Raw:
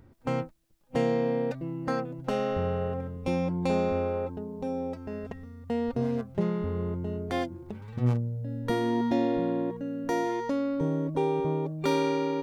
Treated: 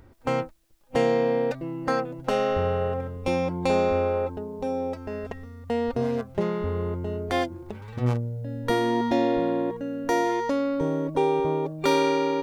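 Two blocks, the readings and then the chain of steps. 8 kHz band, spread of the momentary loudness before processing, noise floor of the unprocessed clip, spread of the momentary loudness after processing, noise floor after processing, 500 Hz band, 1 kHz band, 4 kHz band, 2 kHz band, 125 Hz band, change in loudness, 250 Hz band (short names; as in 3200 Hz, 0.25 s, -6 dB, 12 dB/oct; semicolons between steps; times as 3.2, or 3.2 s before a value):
n/a, 8 LU, -54 dBFS, 9 LU, -50 dBFS, +5.0 dB, +6.0 dB, +6.5 dB, +6.5 dB, +0.5 dB, +3.5 dB, +1.5 dB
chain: bell 170 Hz -8.5 dB 1.5 oct; gain +6.5 dB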